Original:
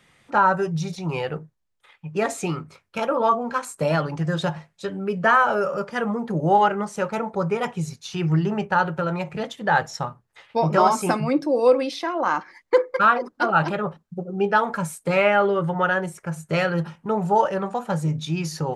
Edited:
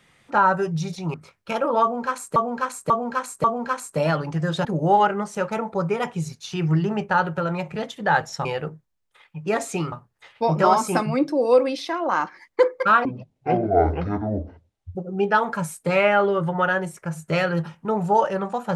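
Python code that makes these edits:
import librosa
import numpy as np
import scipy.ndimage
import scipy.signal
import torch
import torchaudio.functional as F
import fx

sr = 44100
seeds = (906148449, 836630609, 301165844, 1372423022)

y = fx.edit(x, sr, fx.move(start_s=1.14, length_s=1.47, to_s=10.06),
    fx.repeat(start_s=3.29, length_s=0.54, count=4),
    fx.cut(start_s=4.5, length_s=1.76),
    fx.speed_span(start_s=13.19, length_s=0.97, speed=0.51), tone=tone)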